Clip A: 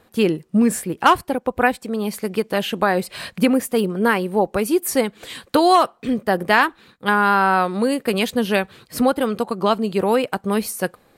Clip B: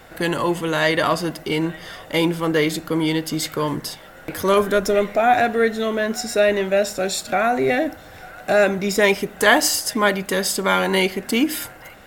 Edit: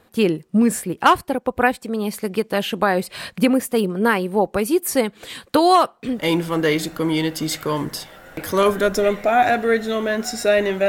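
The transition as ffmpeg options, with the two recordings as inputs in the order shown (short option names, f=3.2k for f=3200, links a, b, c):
-filter_complex "[0:a]apad=whole_dur=10.88,atrim=end=10.88,atrim=end=6.3,asetpts=PTS-STARTPTS[a];[1:a]atrim=start=1.95:end=6.79,asetpts=PTS-STARTPTS[b];[a][b]acrossfade=d=0.26:c1=tri:c2=tri"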